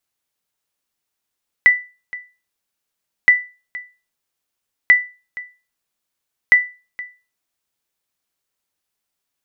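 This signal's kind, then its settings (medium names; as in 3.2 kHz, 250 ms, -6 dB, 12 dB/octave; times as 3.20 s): sonar ping 1.98 kHz, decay 0.31 s, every 1.62 s, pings 4, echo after 0.47 s, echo -19.5 dB -2.5 dBFS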